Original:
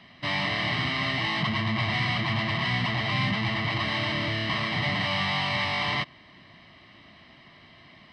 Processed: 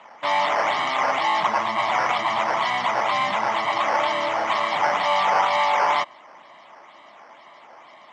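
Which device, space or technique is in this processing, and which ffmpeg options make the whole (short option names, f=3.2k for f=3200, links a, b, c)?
circuit-bent sampling toy: -af "acrusher=samples=8:mix=1:aa=0.000001:lfo=1:lforange=8:lforate=2.1,highpass=520,equalizer=f=570:t=q:w=4:g=6,equalizer=f=870:t=q:w=4:g=10,equalizer=f=1.2k:t=q:w=4:g=4,equalizer=f=1.8k:t=q:w=4:g=-5,equalizer=f=2.7k:t=q:w=4:g=-6,equalizer=f=4.2k:t=q:w=4:g=-7,lowpass=f=4.6k:w=0.5412,lowpass=f=4.6k:w=1.3066,volume=6dB"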